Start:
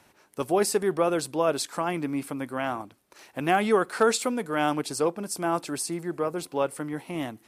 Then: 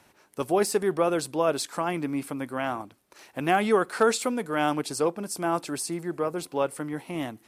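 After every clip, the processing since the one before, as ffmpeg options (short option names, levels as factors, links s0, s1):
-af "deesser=0.45"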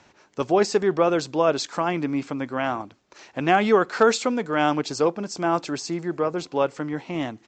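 -af "aresample=16000,aresample=44100,volume=1.58"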